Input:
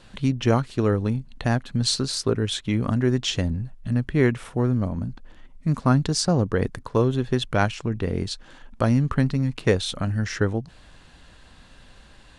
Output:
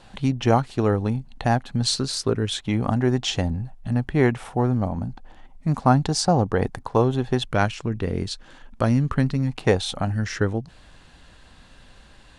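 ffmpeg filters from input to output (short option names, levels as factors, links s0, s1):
-af "asetnsamples=n=441:p=0,asendcmd='1.86 equalizer g 2.5;2.59 equalizer g 12.5;7.44 equalizer g 1;9.47 equalizer g 11.5;10.13 equalizer g 1',equalizer=f=790:t=o:w=0.47:g=9.5"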